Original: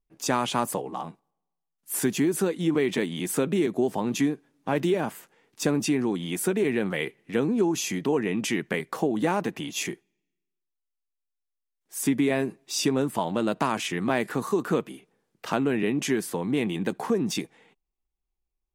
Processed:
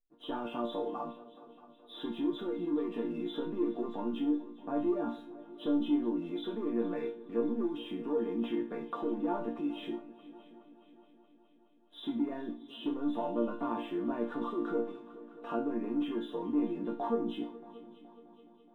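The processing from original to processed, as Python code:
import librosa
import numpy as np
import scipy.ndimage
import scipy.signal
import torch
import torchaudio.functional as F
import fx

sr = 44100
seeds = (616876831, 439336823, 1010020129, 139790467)

p1 = fx.freq_compress(x, sr, knee_hz=2500.0, ratio=4.0)
p2 = fx.peak_eq(p1, sr, hz=350.0, db=9.5, octaves=1.9)
p3 = fx.leveller(p2, sr, passes=1)
p4 = fx.over_compress(p3, sr, threshold_db=-23.0, ratio=-1.0)
p5 = p3 + (p4 * librosa.db_to_amplitude(-1.0))
p6 = fx.high_shelf_res(p5, sr, hz=1700.0, db=-9.5, q=1.5)
p7 = fx.resonator_bank(p6, sr, root=58, chord='major', decay_s=0.33)
p8 = p7 + fx.echo_heads(p7, sr, ms=210, heads='second and third', feedback_pct=53, wet_db=-20.0, dry=0)
p9 = fx.room_shoebox(p8, sr, seeds[0], volume_m3=2600.0, walls='furnished', distance_m=0.45)
y = p9 * librosa.db_to_amplitude(-3.0)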